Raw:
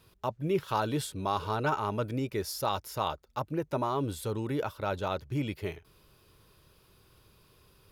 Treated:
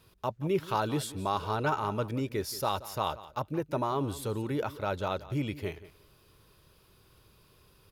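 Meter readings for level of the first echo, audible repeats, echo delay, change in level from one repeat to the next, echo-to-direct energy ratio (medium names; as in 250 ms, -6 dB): -17.0 dB, 2, 178 ms, -15.5 dB, -17.0 dB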